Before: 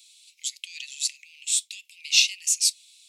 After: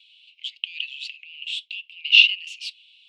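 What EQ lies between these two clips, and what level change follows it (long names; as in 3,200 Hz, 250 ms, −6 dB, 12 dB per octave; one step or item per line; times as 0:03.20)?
high-pass with resonance 2,900 Hz, resonance Q 9.4
high-frequency loss of the air 410 metres
high-shelf EQ 8,600 Hz −5 dB
+2.5 dB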